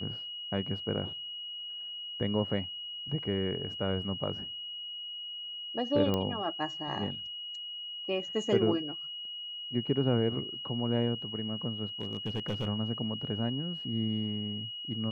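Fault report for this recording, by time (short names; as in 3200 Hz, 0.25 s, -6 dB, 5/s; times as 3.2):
tone 2900 Hz -38 dBFS
6.14 pop -17 dBFS
12.01–12.67 clipped -27.5 dBFS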